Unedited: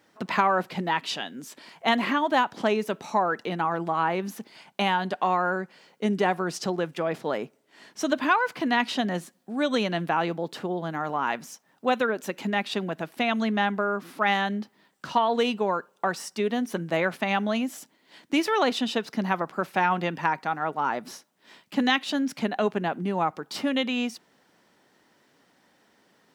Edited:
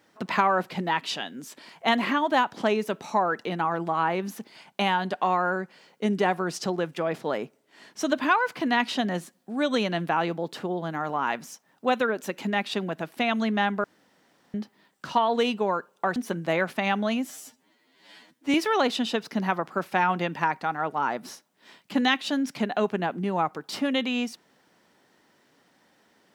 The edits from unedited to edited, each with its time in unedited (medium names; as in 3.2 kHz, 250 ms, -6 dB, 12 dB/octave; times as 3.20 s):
13.84–14.54 s: room tone
16.16–16.60 s: delete
17.74–18.36 s: stretch 2×